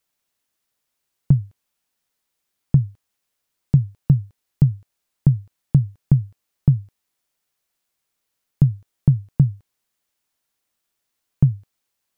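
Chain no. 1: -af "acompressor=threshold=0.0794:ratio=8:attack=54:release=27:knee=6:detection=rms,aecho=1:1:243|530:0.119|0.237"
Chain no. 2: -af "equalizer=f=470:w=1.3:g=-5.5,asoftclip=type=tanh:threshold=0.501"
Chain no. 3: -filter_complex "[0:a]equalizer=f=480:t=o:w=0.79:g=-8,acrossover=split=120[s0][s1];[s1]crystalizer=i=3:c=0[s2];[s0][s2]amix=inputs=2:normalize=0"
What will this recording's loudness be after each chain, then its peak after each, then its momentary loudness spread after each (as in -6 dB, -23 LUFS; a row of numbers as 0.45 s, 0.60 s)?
-28.5 LUFS, -23.0 LUFS, -21.5 LUFS; -7.5 dBFS, -7.5 dBFS, -4.0 dBFS; 13 LU, 4 LU, 4 LU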